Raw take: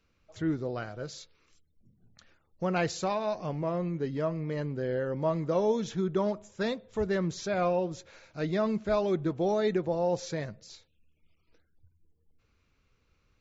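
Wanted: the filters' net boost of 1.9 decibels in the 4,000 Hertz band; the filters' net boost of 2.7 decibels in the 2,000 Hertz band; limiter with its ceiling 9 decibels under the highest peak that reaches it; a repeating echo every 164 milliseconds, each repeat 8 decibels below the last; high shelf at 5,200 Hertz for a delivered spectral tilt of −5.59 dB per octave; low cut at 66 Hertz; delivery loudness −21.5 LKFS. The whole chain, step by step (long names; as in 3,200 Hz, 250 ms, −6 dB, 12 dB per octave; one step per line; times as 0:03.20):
high-pass filter 66 Hz
parametric band 2,000 Hz +3.5 dB
parametric band 4,000 Hz +4 dB
high-shelf EQ 5,200 Hz −6 dB
brickwall limiter −23.5 dBFS
repeating echo 164 ms, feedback 40%, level −8 dB
level +11 dB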